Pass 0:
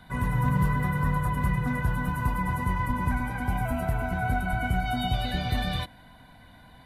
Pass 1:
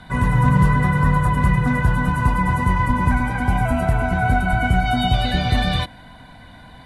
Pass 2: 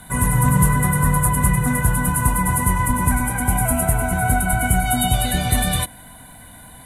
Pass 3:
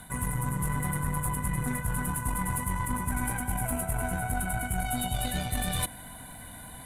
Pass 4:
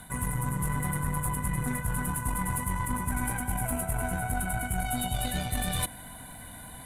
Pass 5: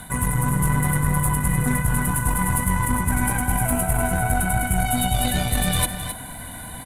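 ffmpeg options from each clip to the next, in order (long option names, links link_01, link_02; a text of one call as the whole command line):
ffmpeg -i in.wav -af "lowpass=frequency=10000:width=0.5412,lowpass=frequency=10000:width=1.3066,volume=9dB" out.wav
ffmpeg -i in.wav -af "aexciter=amount=15.2:drive=6.2:freq=7400,volume=-1dB" out.wav
ffmpeg -i in.wav -af "areverse,acompressor=threshold=-24dB:ratio=12,areverse,aeval=exprs='0.158*(cos(1*acos(clip(val(0)/0.158,-1,1)))-cos(1*PI/2))+0.0158*(cos(4*acos(clip(val(0)/0.158,-1,1)))-cos(4*PI/2))':channel_layout=same,volume=-2.5dB" out.wav
ffmpeg -i in.wav -af anull out.wav
ffmpeg -i in.wav -af "aecho=1:1:264:0.335,volume=8.5dB" out.wav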